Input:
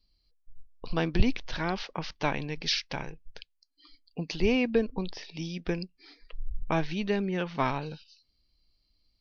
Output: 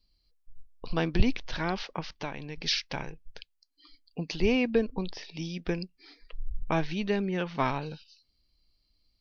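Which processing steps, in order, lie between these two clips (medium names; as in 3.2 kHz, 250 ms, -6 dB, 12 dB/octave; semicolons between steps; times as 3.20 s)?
2.00–2.58 s: compression 2:1, threshold -38 dBFS, peak gain reduction 9.5 dB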